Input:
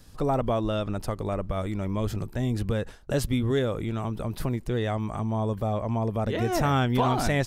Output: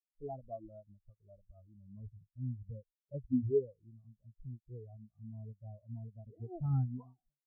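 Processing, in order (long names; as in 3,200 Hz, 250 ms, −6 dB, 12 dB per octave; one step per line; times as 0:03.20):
fade-out on the ending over 0.65 s
every bin expanded away from the loudest bin 4 to 1
level −7.5 dB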